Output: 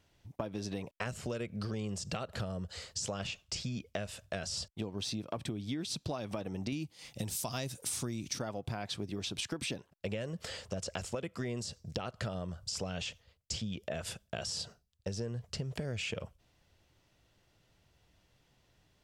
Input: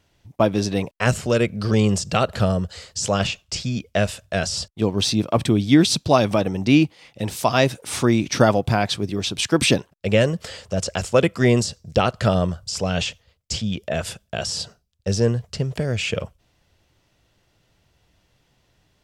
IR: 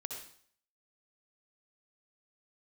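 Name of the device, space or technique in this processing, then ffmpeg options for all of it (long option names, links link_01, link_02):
serial compression, peaks first: -filter_complex "[0:a]asettb=1/sr,asplit=3[link_01][link_02][link_03];[link_01]atrim=end=6.724[link_04];[link_02]atrim=start=6.72:end=8.39,asetpts=PTS-STARTPTS,afade=type=in:duration=0.004:curve=qsin,afade=type=out:start_time=1.666:duration=0.004:curve=qsin,bass=frequency=250:gain=7,treble=frequency=4000:gain=14[link_05];[link_03]atrim=start=8.386[link_06];[link_04][link_05]acrossfade=duration=0.004:curve1=hsin:curve2=qsin[link_07];[link_07][link_06]acrossfade=duration=0.004:curve1=qsin:curve2=hsin,acompressor=threshold=-23dB:ratio=6,acompressor=threshold=-30dB:ratio=2.5,volume=-6dB"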